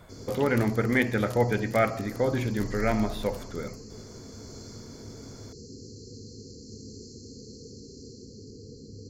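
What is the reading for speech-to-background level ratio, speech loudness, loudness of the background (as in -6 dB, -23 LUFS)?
18.0 dB, -27.0 LUFS, -45.0 LUFS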